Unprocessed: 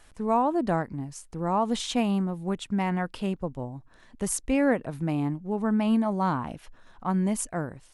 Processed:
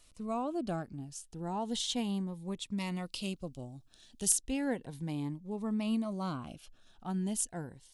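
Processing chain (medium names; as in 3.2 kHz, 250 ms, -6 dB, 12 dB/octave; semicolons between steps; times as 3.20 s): resonant high shelf 2.5 kHz +6 dB, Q 1.5, from 2.78 s +13.5 dB, from 4.32 s +7 dB; Shepard-style phaser rising 0.34 Hz; trim -8.5 dB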